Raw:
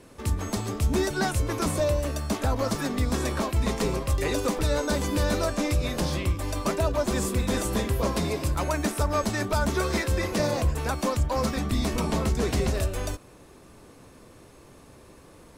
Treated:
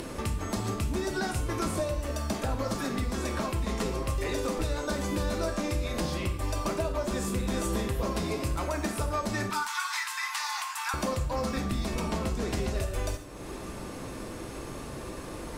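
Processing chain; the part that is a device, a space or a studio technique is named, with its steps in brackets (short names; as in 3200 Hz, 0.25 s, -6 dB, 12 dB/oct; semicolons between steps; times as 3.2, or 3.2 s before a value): 9.5–10.94 steep high-pass 860 Hz 72 dB/oct; upward and downward compression (upward compressor, threshold -29 dBFS; compressor, threshold -28 dBFS, peak gain reduction 9 dB); high shelf 9500 Hz -3.5 dB; non-linear reverb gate 0.19 s falling, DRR 4 dB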